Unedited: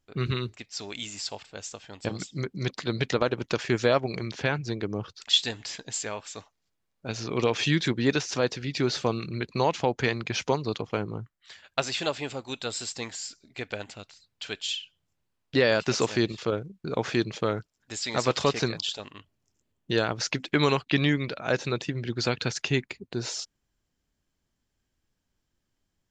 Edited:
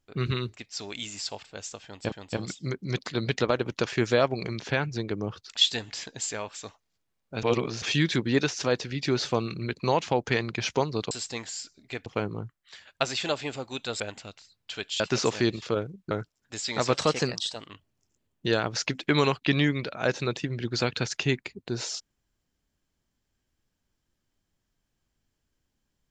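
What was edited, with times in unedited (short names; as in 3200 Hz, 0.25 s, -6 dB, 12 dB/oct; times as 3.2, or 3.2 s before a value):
1.84–2.12 loop, 2 plays
7.15–7.54 reverse
12.77–13.72 move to 10.83
14.72–15.76 cut
16.87–17.49 cut
18.32–19.15 speed 109%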